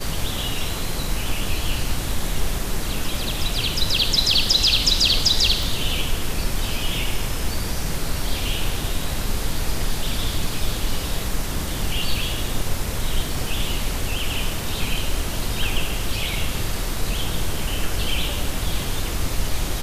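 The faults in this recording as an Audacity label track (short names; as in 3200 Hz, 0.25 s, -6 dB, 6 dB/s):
5.630000	5.630000	pop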